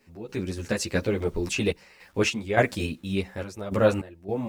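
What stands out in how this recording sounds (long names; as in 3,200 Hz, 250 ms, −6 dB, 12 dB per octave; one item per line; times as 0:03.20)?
a quantiser's noise floor 10 bits, dither none
sample-and-hold tremolo, depth 90%
a shimmering, thickened sound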